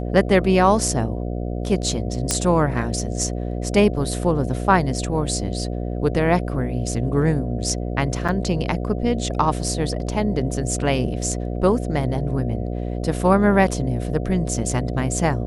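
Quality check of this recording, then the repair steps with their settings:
mains buzz 60 Hz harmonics 12 −26 dBFS
0:02.31: click −4 dBFS
0:08.28–0:08.29: drop-out 6.6 ms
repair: click removal
hum removal 60 Hz, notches 12
repair the gap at 0:08.28, 6.6 ms

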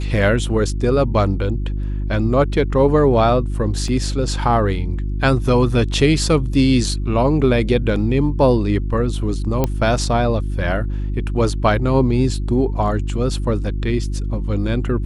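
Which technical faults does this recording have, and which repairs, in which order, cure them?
mains hum 50 Hz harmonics 7 −22 dBFS
0:03.88: drop-out 2.3 ms
0:09.64: click −5 dBFS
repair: click removal
hum removal 50 Hz, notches 7
repair the gap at 0:03.88, 2.3 ms

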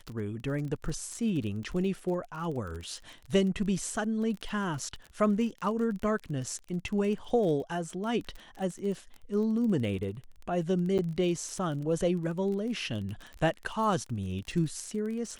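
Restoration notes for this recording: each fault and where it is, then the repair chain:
surface crackle 29 per second −36 dBFS
0:10.98–0:10.99: drop-out 8.5 ms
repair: click removal
repair the gap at 0:10.98, 8.5 ms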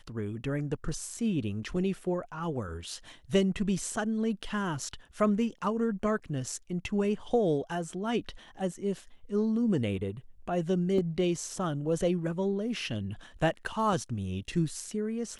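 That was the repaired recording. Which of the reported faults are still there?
none of them is left

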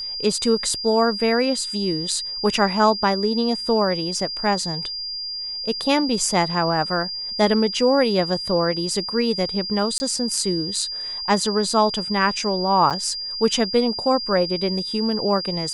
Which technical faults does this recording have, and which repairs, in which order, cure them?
whistle 4,800 Hz −27 dBFS
0:09.98–0:10.00: drop-out 20 ms
0:12.90–0:12.91: drop-out 7.2 ms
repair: notch filter 4,800 Hz, Q 30
repair the gap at 0:09.98, 20 ms
repair the gap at 0:12.90, 7.2 ms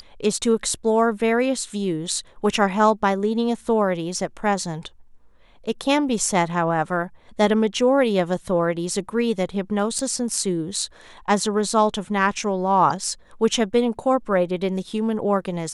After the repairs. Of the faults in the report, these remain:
none of them is left

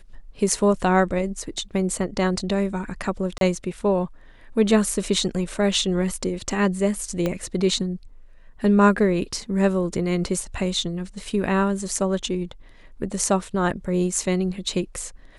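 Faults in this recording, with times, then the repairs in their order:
0:03.38–0:03.41: drop-out 32 ms
0:07.26: click −11 dBFS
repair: click removal
repair the gap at 0:03.38, 32 ms

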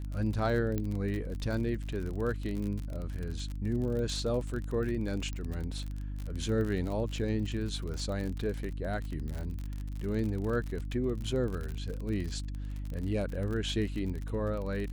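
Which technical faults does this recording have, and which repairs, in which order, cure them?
surface crackle 44 per second −35 dBFS
mains hum 50 Hz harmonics 6 −37 dBFS
0:00.78: click −20 dBFS
0:05.33: click −26 dBFS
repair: click removal
hum removal 50 Hz, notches 6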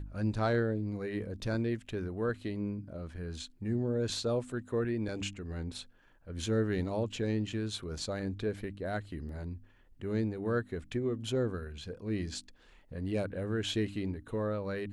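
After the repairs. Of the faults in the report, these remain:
none of them is left

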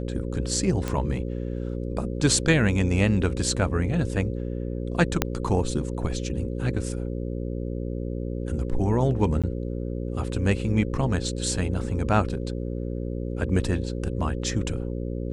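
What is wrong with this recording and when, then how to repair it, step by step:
mains buzz 60 Hz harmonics 9 −30 dBFS
0:00.88: click −14 dBFS
0:05.22: click −5 dBFS
0:09.42–0:09.44: drop-out 16 ms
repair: click removal
hum removal 60 Hz, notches 9
repair the gap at 0:09.42, 16 ms

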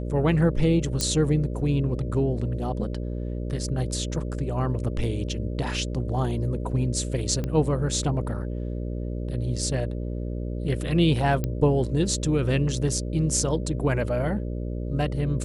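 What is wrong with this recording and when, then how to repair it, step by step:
mains buzz 60 Hz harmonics 10 −30 dBFS
0:01.01: click −10 dBFS
0:07.44: click −17 dBFS
0:11.44: click −14 dBFS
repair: click removal
hum removal 60 Hz, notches 10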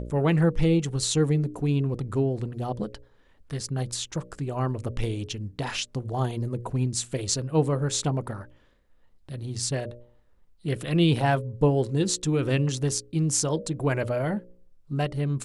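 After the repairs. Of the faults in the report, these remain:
none of them is left

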